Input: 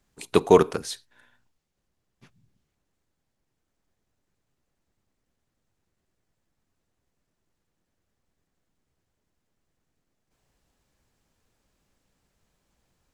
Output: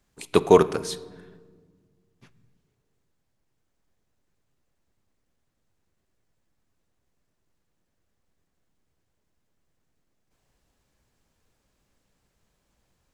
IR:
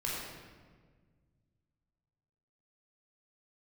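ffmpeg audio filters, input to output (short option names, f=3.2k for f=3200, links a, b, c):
-filter_complex "[0:a]asplit=2[a][b];[1:a]atrim=start_sample=2205,highshelf=f=5.5k:g=-7[c];[b][c]afir=irnorm=-1:irlink=0,volume=-19dB[d];[a][d]amix=inputs=2:normalize=0"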